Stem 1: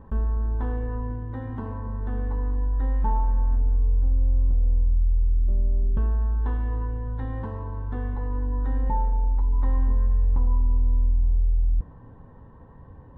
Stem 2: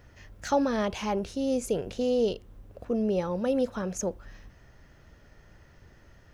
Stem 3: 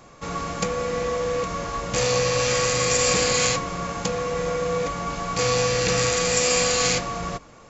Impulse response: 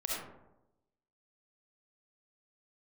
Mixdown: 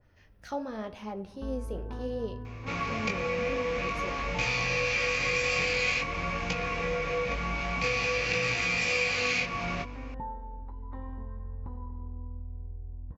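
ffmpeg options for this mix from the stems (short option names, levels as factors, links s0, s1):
-filter_complex "[0:a]highpass=f=62:w=0.5412,highpass=f=62:w=1.3066,adelay=1300,volume=0.376,asplit=2[s0][s1];[s1]volume=0.0668[s2];[1:a]flanger=delay=8.7:depth=9:regen=50:speed=0.89:shape=triangular,adynamicequalizer=threshold=0.00355:dfrequency=1900:dqfactor=0.7:tfrequency=1900:tqfactor=0.7:attack=5:release=100:ratio=0.375:range=3:mode=cutabove:tftype=highshelf,volume=0.501,asplit=2[s3][s4];[s4]volume=0.119[s5];[2:a]flanger=delay=17:depth=5.7:speed=0.48,equalizer=f=2400:t=o:w=0.5:g=14.5,adelay=2450,volume=0.891[s6];[3:a]atrim=start_sample=2205[s7];[s2][s5]amix=inputs=2:normalize=0[s8];[s8][s7]afir=irnorm=-1:irlink=0[s9];[s0][s3][s6][s9]amix=inputs=4:normalize=0,equalizer=f=7200:t=o:w=0.29:g=-15,acompressor=threshold=0.0398:ratio=2.5"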